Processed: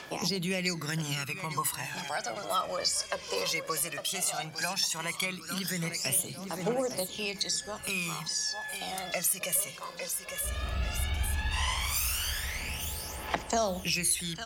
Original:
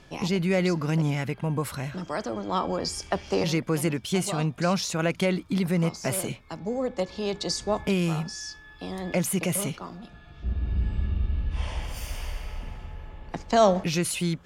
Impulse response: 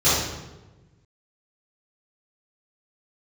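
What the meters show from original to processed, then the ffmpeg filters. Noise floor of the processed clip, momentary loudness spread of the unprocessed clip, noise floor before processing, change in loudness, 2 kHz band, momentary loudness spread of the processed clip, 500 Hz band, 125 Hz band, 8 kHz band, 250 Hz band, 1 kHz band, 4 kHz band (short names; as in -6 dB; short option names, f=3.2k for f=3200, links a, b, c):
-45 dBFS, 14 LU, -49 dBFS, -3.5 dB, +1.0 dB, 6 LU, -8.5 dB, -9.5 dB, +4.0 dB, -11.5 dB, -4.0 dB, +2.5 dB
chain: -filter_complex "[0:a]aderivative,apsyclip=20.5dB,dynaudnorm=f=440:g=3:m=9dB,highshelf=f=2.2k:g=-10.5,asplit=2[a][b];[b]aecho=0:1:854|1708|2562|3416|4270:0.224|0.112|0.056|0.028|0.014[c];[a][c]amix=inputs=2:normalize=0,acrossover=split=130[d][e];[e]acompressor=threshold=-42dB:ratio=2[f];[d][f]amix=inputs=2:normalize=0,aphaser=in_gain=1:out_gain=1:delay=2:decay=0.67:speed=0.15:type=triangular,bandreject=f=50:t=h:w=6,bandreject=f=100:t=h:w=6,bandreject=f=150:t=h:w=6,bandreject=f=200:t=h:w=6,bandreject=f=250:t=h:w=6,bandreject=f=300:t=h:w=6,bandreject=f=350:t=h:w=6,volume=2dB"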